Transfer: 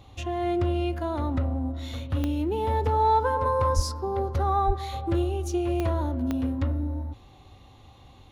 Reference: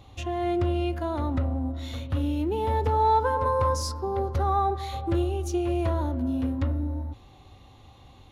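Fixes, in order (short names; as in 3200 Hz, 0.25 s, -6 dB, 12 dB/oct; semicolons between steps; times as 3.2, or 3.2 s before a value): de-click; de-plosive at 3.75/4.66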